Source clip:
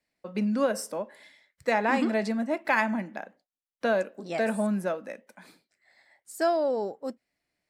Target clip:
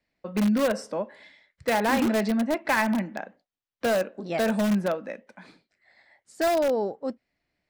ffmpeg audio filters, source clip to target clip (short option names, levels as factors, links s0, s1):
-filter_complex "[0:a]lowpass=4700,lowshelf=f=140:g=7,asplit=2[s0][s1];[s1]aeval=exprs='(mod(10*val(0)+1,2)-1)/10':c=same,volume=0.376[s2];[s0][s2]amix=inputs=2:normalize=0"